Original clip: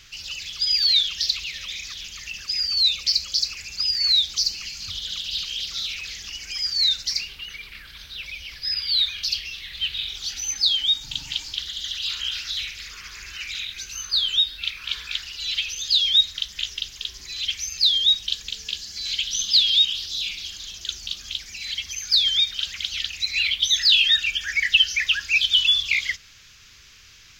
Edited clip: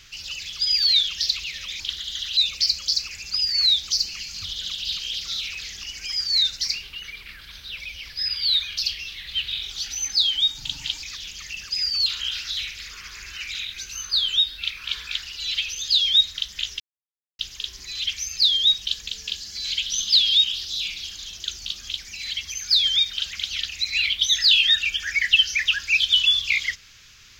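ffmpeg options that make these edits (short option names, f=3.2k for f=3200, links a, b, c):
-filter_complex "[0:a]asplit=6[a][b][c][d][e][f];[a]atrim=end=1.802[g];[b]atrim=start=11.488:end=12.062[h];[c]atrim=start=2.828:end=11.492[i];[d]atrim=start=1.798:end=2.832[j];[e]atrim=start=12.058:end=16.8,asetpts=PTS-STARTPTS,afade=t=out:st=4.738:d=0.004:c=hsin,apad=pad_dur=0.59[k];[f]atrim=start=16.8,asetpts=PTS-STARTPTS,afade=t=in:d=0.004:c=hsin[l];[g][h]acrossfade=d=0.004:c1=hsin:c2=hsin[m];[m][i]acrossfade=d=0.004:c1=hsin:c2=hsin[n];[n][j]acrossfade=d=0.004:c1=hsin:c2=hsin[o];[k][l]concat=n=2:v=0:a=1[p];[o][p]acrossfade=d=0.004:c1=hsin:c2=hsin"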